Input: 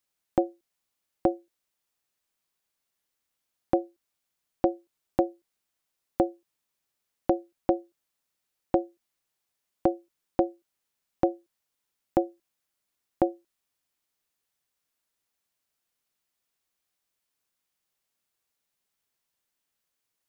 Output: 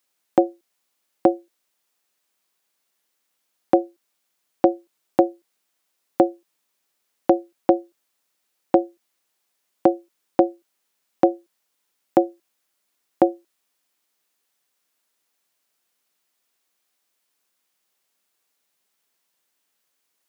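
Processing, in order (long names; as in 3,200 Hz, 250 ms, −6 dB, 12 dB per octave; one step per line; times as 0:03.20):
high-pass filter 210 Hz 12 dB per octave
level +8 dB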